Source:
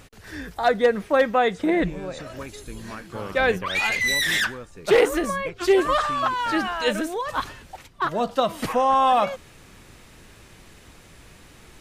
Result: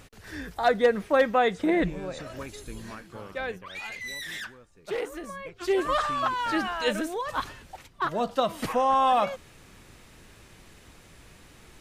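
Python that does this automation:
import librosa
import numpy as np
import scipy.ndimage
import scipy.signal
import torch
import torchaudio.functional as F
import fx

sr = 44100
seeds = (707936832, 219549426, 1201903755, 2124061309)

y = fx.gain(x, sr, db=fx.line((2.78, -2.5), (3.59, -14.5), (5.18, -14.5), (6.0, -3.5)))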